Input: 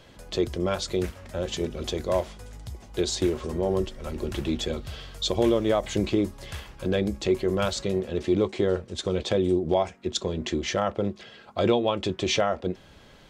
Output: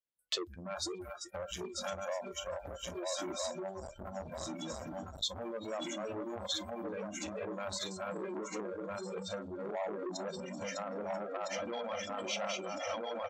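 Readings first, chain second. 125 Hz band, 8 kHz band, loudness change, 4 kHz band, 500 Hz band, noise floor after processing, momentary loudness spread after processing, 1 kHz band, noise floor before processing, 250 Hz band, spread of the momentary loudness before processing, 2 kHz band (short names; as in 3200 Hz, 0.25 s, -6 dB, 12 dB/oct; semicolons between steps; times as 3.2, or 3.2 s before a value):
-19.0 dB, -6.0 dB, -12.5 dB, -8.0 dB, -13.0 dB, -51 dBFS, 5 LU, -8.5 dB, -52 dBFS, -16.0 dB, 10 LU, -8.0 dB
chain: regenerating reverse delay 0.654 s, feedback 76%, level -1.5 dB; on a send: feedback echo 0.385 s, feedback 47%, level -10 dB; on the sum: limiter -17 dBFS, peak gain reduction 10.5 dB; compressor 5:1, threshold -35 dBFS, peak gain reduction 12.5 dB; spectral noise reduction 30 dB; low shelf 380 Hz -9.5 dB; gate -52 dBFS, range -25 dB; core saturation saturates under 1900 Hz; gain +5.5 dB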